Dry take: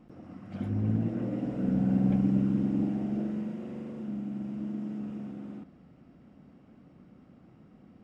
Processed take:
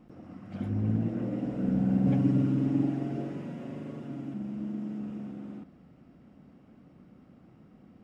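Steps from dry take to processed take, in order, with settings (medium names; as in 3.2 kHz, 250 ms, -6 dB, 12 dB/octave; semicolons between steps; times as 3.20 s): 2.06–4.34 s: comb 7.2 ms, depth 98%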